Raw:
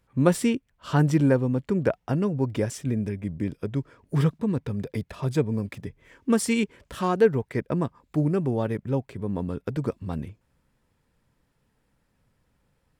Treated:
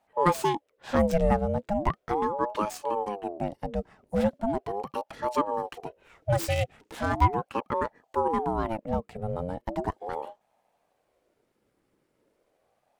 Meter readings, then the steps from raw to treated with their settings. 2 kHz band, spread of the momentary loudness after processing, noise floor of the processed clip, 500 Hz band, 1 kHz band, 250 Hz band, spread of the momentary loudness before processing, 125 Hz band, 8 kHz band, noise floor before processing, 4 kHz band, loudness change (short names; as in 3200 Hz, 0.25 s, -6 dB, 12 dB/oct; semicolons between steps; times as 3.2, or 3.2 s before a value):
-2.0 dB, 10 LU, -75 dBFS, -2.0 dB, +8.0 dB, -7.0 dB, 10 LU, -7.5 dB, -6.5 dB, -71 dBFS, -1.5 dB, -3.0 dB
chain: tracing distortion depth 0.091 ms; ring modulator with a swept carrier 530 Hz, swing 40%, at 0.38 Hz